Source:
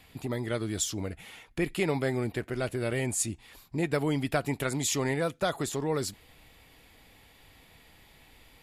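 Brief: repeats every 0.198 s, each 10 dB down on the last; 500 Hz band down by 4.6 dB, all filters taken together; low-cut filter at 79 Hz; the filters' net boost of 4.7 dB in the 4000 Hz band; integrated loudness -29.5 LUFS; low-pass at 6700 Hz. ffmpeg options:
-af "highpass=79,lowpass=6.7k,equalizer=f=500:t=o:g=-6,equalizer=f=4k:t=o:g=6.5,aecho=1:1:198|396|594|792:0.316|0.101|0.0324|0.0104,volume=2.5dB"

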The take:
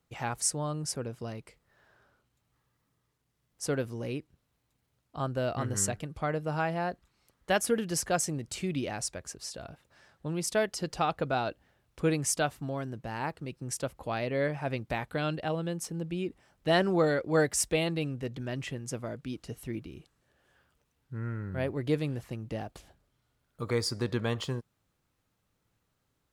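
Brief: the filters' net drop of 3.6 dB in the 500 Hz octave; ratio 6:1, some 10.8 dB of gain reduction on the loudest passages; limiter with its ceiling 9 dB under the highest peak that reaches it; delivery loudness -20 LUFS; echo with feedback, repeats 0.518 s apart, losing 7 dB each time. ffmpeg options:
-af "equalizer=f=500:t=o:g=-4.5,acompressor=threshold=-35dB:ratio=6,alimiter=level_in=7.5dB:limit=-24dB:level=0:latency=1,volume=-7.5dB,aecho=1:1:518|1036|1554|2072|2590:0.447|0.201|0.0905|0.0407|0.0183,volume=21.5dB"

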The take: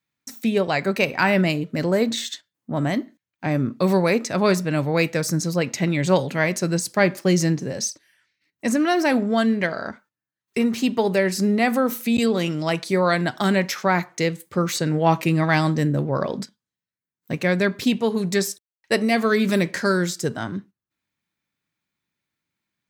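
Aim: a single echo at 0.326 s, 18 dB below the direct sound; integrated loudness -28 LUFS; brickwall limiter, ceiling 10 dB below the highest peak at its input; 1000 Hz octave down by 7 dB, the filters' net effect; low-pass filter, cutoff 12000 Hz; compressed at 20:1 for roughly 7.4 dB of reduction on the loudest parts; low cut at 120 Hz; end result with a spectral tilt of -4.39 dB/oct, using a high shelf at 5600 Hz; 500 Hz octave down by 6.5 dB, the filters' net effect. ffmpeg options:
-af "highpass=120,lowpass=12k,equalizer=f=500:t=o:g=-6.5,equalizer=f=1k:t=o:g=-7.5,highshelf=f=5.6k:g=6.5,acompressor=threshold=-24dB:ratio=20,alimiter=limit=-21dB:level=0:latency=1,aecho=1:1:326:0.126,volume=3dB"

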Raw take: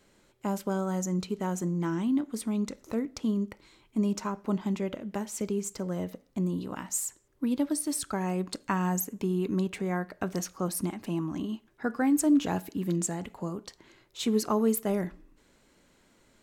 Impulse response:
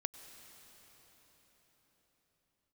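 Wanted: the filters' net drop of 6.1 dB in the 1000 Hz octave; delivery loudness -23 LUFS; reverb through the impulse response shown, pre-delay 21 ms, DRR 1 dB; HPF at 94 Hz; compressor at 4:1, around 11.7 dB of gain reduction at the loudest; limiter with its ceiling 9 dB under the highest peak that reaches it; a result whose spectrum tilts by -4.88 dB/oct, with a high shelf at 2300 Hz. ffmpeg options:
-filter_complex "[0:a]highpass=94,equalizer=f=1k:t=o:g=-9,highshelf=f=2.3k:g=6,acompressor=threshold=-35dB:ratio=4,alimiter=level_in=6.5dB:limit=-24dB:level=0:latency=1,volume=-6.5dB,asplit=2[a][b];[1:a]atrim=start_sample=2205,adelay=21[c];[b][c]afir=irnorm=-1:irlink=0,volume=0dB[d];[a][d]amix=inputs=2:normalize=0,volume=14dB"

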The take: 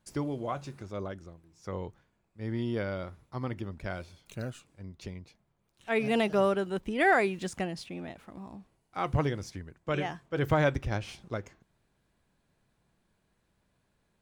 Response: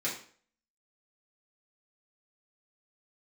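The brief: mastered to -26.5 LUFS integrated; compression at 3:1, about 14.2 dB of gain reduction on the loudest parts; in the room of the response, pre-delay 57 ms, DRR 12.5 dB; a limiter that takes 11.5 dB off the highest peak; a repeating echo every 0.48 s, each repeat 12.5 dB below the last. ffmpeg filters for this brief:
-filter_complex "[0:a]acompressor=threshold=-40dB:ratio=3,alimiter=level_in=14dB:limit=-24dB:level=0:latency=1,volume=-14dB,aecho=1:1:480|960|1440:0.237|0.0569|0.0137,asplit=2[a][b];[1:a]atrim=start_sample=2205,adelay=57[c];[b][c]afir=irnorm=-1:irlink=0,volume=-18.5dB[d];[a][d]amix=inputs=2:normalize=0,volume=21.5dB"

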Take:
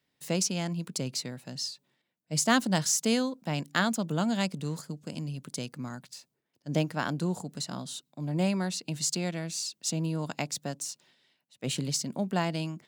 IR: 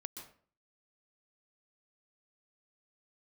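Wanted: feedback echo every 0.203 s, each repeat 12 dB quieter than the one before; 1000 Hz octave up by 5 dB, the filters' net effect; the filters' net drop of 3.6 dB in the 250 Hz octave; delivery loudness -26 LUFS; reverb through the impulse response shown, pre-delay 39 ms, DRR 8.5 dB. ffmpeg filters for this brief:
-filter_complex "[0:a]equalizer=f=250:t=o:g=-5.5,equalizer=f=1k:t=o:g=7,aecho=1:1:203|406|609:0.251|0.0628|0.0157,asplit=2[a][b];[1:a]atrim=start_sample=2205,adelay=39[c];[b][c]afir=irnorm=-1:irlink=0,volume=-5.5dB[d];[a][d]amix=inputs=2:normalize=0,volume=4.5dB"

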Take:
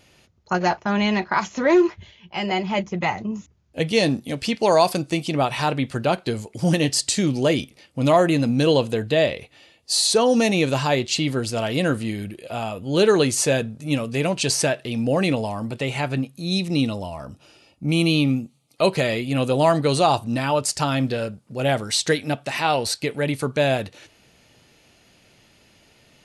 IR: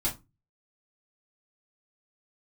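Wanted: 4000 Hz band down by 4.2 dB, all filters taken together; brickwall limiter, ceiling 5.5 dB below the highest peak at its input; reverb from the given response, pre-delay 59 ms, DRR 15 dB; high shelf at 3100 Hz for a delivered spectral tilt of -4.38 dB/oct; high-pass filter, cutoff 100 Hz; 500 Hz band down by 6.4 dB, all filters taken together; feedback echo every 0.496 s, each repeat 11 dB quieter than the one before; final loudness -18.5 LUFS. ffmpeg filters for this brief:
-filter_complex "[0:a]highpass=100,equalizer=f=500:t=o:g=-8.5,highshelf=f=3.1k:g=5,equalizer=f=4k:t=o:g=-9,alimiter=limit=-13.5dB:level=0:latency=1,aecho=1:1:496|992|1488:0.282|0.0789|0.0221,asplit=2[a][b];[1:a]atrim=start_sample=2205,adelay=59[c];[b][c]afir=irnorm=-1:irlink=0,volume=-21dB[d];[a][d]amix=inputs=2:normalize=0,volume=6.5dB"

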